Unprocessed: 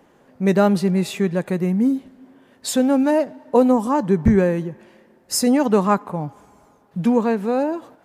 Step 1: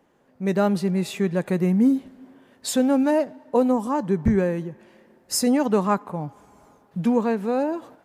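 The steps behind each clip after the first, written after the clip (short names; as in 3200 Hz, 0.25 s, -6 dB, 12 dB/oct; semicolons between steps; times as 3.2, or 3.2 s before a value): AGC gain up to 11.5 dB; gain -8.5 dB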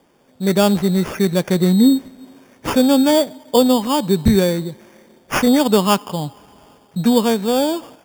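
sample-and-hold 11×; gain +6 dB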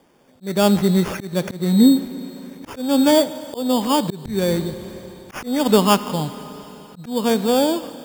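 Schroeder reverb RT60 4 s, combs from 25 ms, DRR 14.5 dB; auto swell 0.279 s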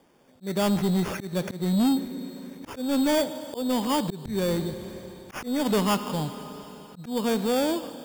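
soft clip -14.5 dBFS, distortion -11 dB; gain -4 dB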